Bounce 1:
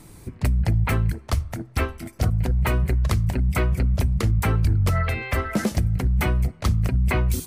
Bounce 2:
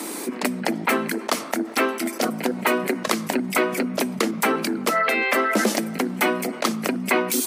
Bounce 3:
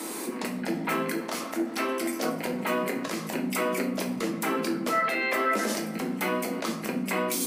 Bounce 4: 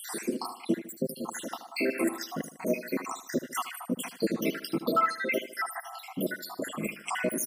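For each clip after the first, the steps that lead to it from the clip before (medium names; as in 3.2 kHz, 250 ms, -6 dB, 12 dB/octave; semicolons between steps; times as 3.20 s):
steep high-pass 230 Hz 48 dB/octave; level flattener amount 50%; trim +5 dB
peak limiter -14.5 dBFS, peak gain reduction 11 dB; simulated room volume 82 m³, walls mixed, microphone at 0.62 m; trim -5.5 dB
random holes in the spectrogram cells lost 79%; feedback delay 76 ms, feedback 44%, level -13 dB; trim +4 dB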